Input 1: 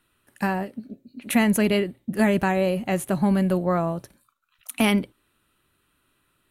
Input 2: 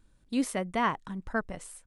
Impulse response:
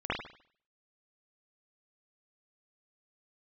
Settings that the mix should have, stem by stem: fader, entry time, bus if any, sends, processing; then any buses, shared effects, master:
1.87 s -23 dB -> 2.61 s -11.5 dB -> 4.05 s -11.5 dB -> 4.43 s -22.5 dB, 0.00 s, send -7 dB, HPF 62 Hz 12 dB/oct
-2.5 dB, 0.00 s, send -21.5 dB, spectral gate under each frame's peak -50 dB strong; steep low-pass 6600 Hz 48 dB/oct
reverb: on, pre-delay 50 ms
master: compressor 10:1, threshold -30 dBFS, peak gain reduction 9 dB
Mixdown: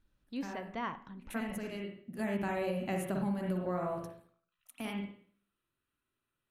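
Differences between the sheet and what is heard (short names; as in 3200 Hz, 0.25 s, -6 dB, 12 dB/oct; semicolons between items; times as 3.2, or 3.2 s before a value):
stem 1: missing HPF 62 Hz 12 dB/oct; stem 2 -2.5 dB -> -10.5 dB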